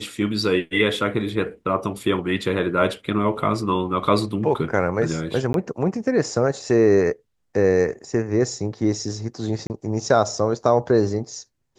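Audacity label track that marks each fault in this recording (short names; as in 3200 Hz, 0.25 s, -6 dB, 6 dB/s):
5.530000	5.540000	gap 12 ms
9.670000	9.700000	gap 29 ms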